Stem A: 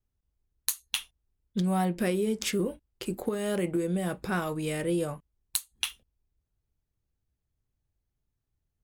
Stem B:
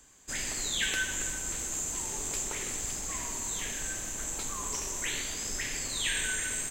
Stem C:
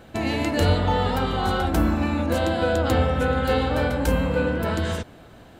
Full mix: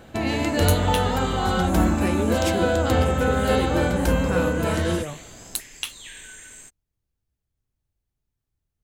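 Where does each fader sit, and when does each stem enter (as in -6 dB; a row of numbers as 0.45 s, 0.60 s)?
+0.5 dB, -10.5 dB, +0.5 dB; 0.00 s, 0.00 s, 0.00 s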